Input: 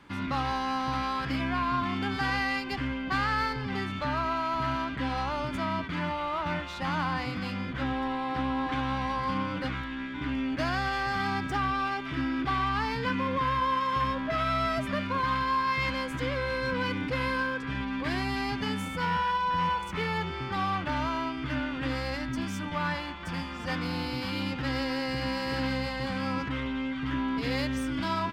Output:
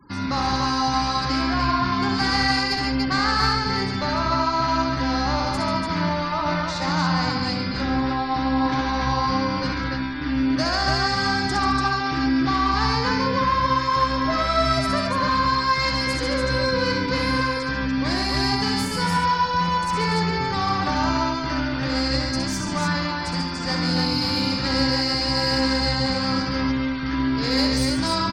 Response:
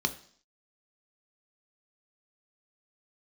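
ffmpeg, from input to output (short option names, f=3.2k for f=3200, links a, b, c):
-af "highshelf=f=3.8k:t=q:w=3:g=6,aecho=1:1:64|140|215|290|299:0.562|0.447|0.188|0.631|0.15,afftfilt=real='re*gte(hypot(re,im),0.00355)':imag='im*gte(hypot(re,im),0.00355)':win_size=1024:overlap=0.75,volume=5dB"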